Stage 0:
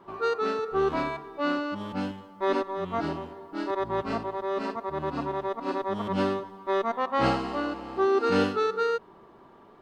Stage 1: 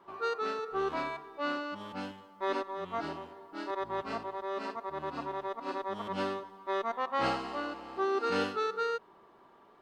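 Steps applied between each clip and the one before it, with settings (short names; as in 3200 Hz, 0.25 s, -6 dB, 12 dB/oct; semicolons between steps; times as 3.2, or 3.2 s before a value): low shelf 360 Hz -10 dB; gain -3.5 dB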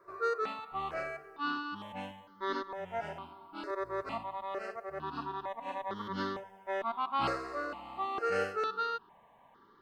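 step phaser 2.2 Hz 840–2500 Hz; gain +1.5 dB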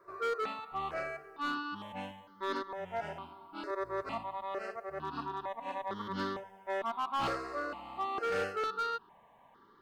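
hard clip -28.5 dBFS, distortion -17 dB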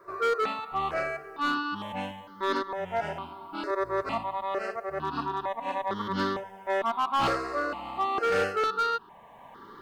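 recorder AGC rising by 10 dB/s; gain +7.5 dB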